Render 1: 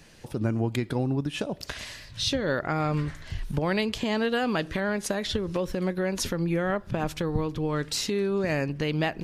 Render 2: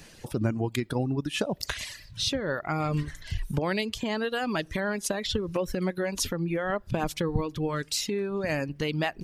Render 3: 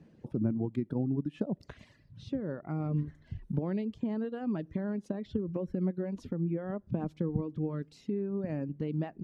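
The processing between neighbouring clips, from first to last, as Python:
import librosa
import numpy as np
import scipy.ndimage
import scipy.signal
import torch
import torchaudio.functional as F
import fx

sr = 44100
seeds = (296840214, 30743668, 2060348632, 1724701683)

y1 = fx.dereverb_blind(x, sr, rt60_s=1.1)
y1 = fx.high_shelf(y1, sr, hz=6100.0, db=4.5)
y1 = fx.rider(y1, sr, range_db=4, speed_s=0.5)
y2 = fx.bandpass_q(y1, sr, hz=210.0, q=1.2)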